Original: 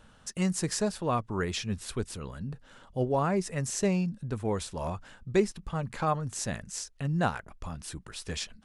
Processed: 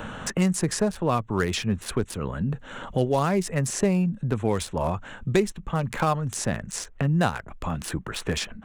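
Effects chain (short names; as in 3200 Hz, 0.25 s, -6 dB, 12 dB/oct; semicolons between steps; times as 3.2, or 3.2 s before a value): Wiener smoothing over 9 samples; high shelf 7800 Hz +5.5 dB; three-band squash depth 70%; gain +5.5 dB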